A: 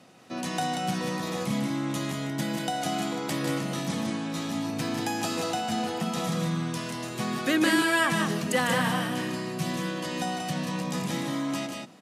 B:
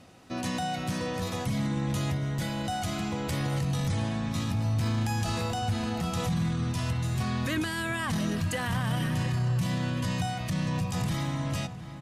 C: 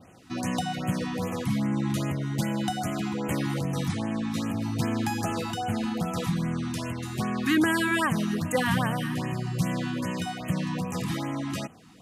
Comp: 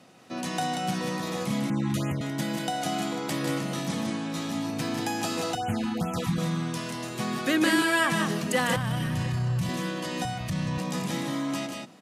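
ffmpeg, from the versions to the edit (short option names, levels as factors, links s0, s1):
-filter_complex "[2:a]asplit=2[s0][s1];[1:a]asplit=2[s2][s3];[0:a]asplit=5[s4][s5][s6][s7][s8];[s4]atrim=end=1.702[s9];[s0]atrim=start=1.698:end=2.212[s10];[s5]atrim=start=2.208:end=5.552[s11];[s1]atrim=start=5.548:end=6.382[s12];[s6]atrim=start=6.378:end=8.762[s13];[s2]atrim=start=8.758:end=9.692[s14];[s7]atrim=start=9.688:end=10.252[s15];[s3]atrim=start=10.248:end=10.782[s16];[s8]atrim=start=10.778[s17];[s9][s10]acrossfade=d=0.004:c1=hsin:c2=hsin[s18];[s18][s11]acrossfade=d=0.004:c1=hsin:c2=hsin[s19];[s19][s12]acrossfade=d=0.004:c1=hsin:c2=hsin[s20];[s20][s13]acrossfade=d=0.004:c1=hsin:c2=hsin[s21];[s21][s14]acrossfade=d=0.004:c1=hsin:c2=hsin[s22];[s22][s15]acrossfade=d=0.004:c1=hsin:c2=hsin[s23];[s23][s16]acrossfade=d=0.004:c1=hsin:c2=hsin[s24];[s24][s17]acrossfade=d=0.004:c1=hsin:c2=hsin"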